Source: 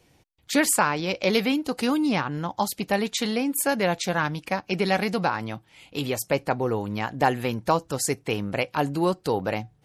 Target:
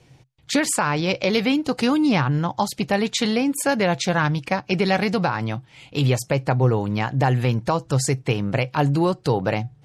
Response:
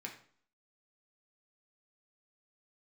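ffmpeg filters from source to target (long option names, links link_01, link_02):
-af "lowpass=8000,equalizer=frequency=130:width_type=o:width=0.33:gain=14.5,alimiter=limit=-14dB:level=0:latency=1:release=156,volume=4.5dB"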